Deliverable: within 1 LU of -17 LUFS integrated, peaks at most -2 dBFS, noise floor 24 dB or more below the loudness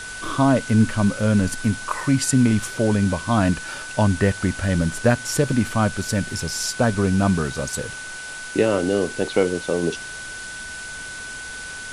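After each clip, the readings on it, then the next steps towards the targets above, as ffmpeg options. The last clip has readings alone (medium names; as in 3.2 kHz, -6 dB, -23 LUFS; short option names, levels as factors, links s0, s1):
steady tone 1.5 kHz; tone level -33 dBFS; noise floor -34 dBFS; noise floor target -46 dBFS; loudness -21.5 LUFS; peak level -5.0 dBFS; loudness target -17.0 LUFS
-> -af "bandreject=f=1500:w=30"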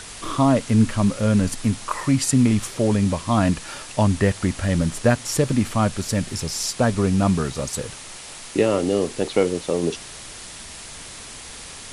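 steady tone not found; noise floor -38 dBFS; noise floor target -46 dBFS
-> -af "afftdn=nr=8:nf=-38"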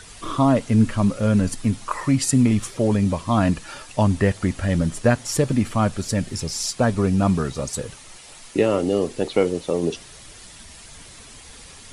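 noise floor -44 dBFS; noise floor target -46 dBFS
-> -af "afftdn=nr=6:nf=-44"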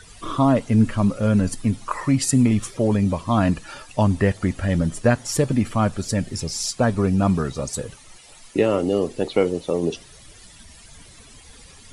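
noise floor -47 dBFS; loudness -21.5 LUFS; peak level -5.5 dBFS; loudness target -17.0 LUFS
-> -af "volume=1.68,alimiter=limit=0.794:level=0:latency=1"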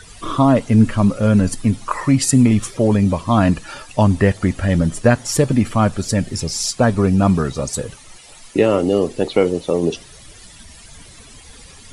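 loudness -17.0 LUFS; peak level -2.0 dBFS; noise floor -43 dBFS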